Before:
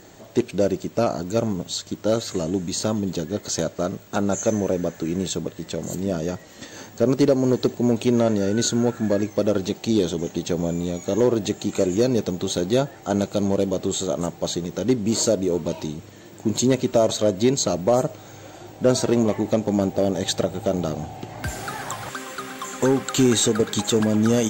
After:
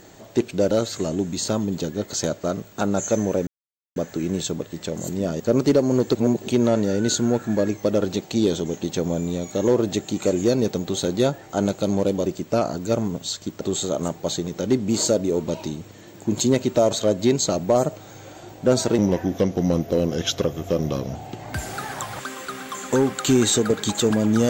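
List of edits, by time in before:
0.71–2.06 move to 13.79
4.82 insert silence 0.49 s
6.26–6.93 cut
7.68–8.01 reverse
19.16–21.05 speed 87%

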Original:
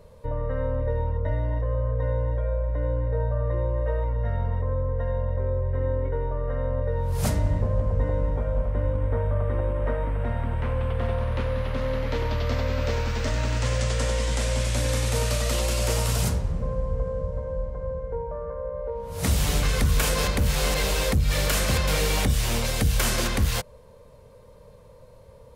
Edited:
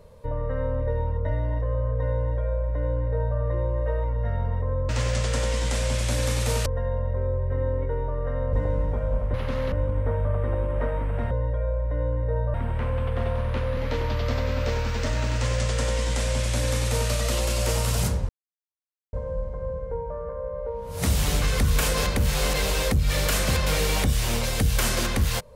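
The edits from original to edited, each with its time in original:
2.15–3.38 copy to 10.37
6.76–7.97 cut
11.6–11.98 move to 8.78
13.55–15.32 copy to 4.89
16.5–17.34 mute

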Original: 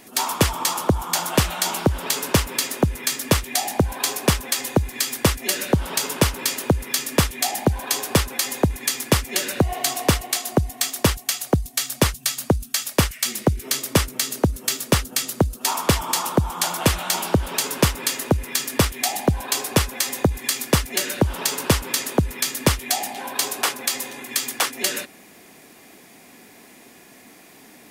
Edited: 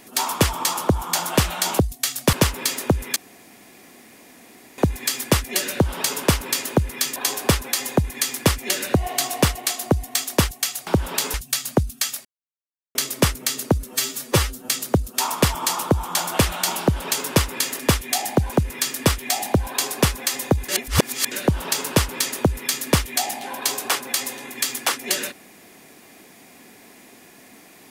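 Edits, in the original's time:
1.79–2.26 swap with 11.53–12.07
3.09–4.71 room tone
7.09–7.82 move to 18.26
12.98–13.68 mute
14.62–15.15 stretch 1.5×
20.42–21.05 reverse

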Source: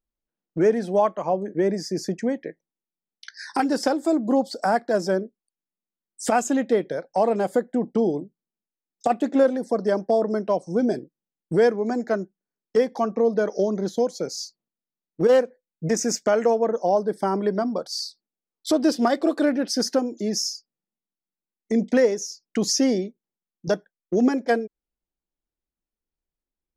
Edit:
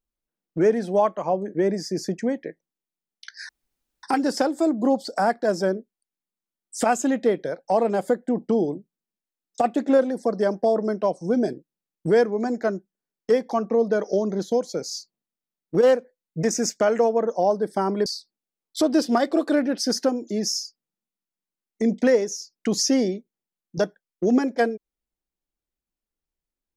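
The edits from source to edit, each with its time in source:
3.49 insert room tone 0.54 s
17.52–17.96 cut

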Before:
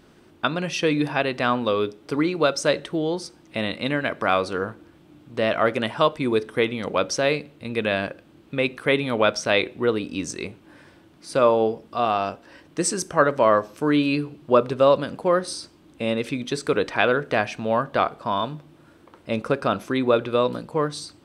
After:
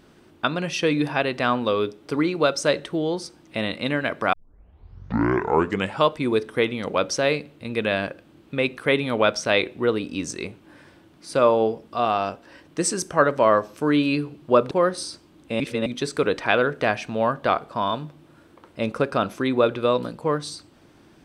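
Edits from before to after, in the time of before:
4.33 tape start 1.74 s
14.71–15.21 cut
16.1–16.36 reverse

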